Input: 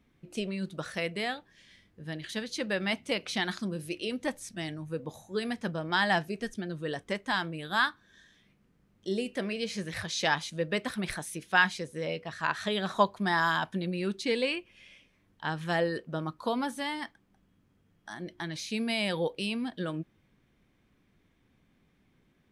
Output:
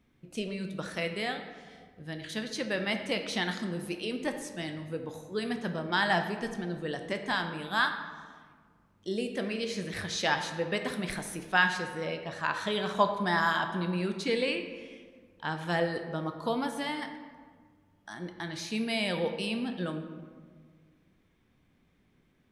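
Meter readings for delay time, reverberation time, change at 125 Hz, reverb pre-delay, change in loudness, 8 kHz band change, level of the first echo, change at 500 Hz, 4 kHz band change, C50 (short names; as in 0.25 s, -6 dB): none, 1.7 s, 0.0 dB, 13 ms, 0.0 dB, -0.5 dB, none, +0.5 dB, -0.5 dB, 7.5 dB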